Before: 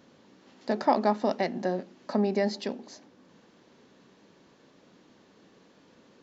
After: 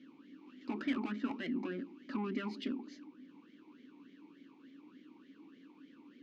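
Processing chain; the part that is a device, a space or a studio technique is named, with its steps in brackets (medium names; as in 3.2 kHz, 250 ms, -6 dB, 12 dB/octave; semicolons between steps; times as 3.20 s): talk box (valve stage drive 31 dB, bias 0.4; talking filter i-u 3.4 Hz); trim +11 dB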